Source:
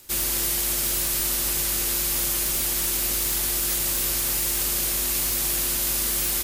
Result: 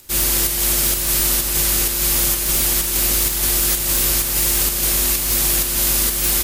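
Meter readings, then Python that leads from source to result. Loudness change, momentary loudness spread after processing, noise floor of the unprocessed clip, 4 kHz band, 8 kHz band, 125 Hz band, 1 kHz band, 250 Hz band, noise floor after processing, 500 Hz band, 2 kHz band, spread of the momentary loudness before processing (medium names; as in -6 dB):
+6.5 dB, 1 LU, -25 dBFS, +6.5 dB, +6.5 dB, +9.5 dB, +6.5 dB, +7.5 dB, -22 dBFS, +7.0 dB, +6.5 dB, 0 LU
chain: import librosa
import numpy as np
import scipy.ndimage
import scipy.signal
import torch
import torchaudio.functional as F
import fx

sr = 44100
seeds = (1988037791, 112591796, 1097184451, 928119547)

p1 = fx.low_shelf(x, sr, hz=160.0, db=4.0)
p2 = fx.volume_shaper(p1, sr, bpm=128, per_beat=1, depth_db=-11, release_ms=141.0, shape='slow start')
y = p1 + (p2 * 10.0 ** (2.0 / 20.0))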